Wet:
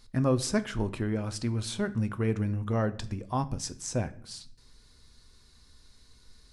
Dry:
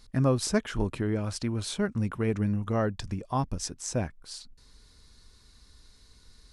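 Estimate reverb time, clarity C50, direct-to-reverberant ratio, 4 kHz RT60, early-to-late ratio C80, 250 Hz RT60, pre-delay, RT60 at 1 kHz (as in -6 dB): 0.60 s, 18.0 dB, 11.0 dB, 0.45 s, 21.0 dB, 0.85 s, 8 ms, 0.55 s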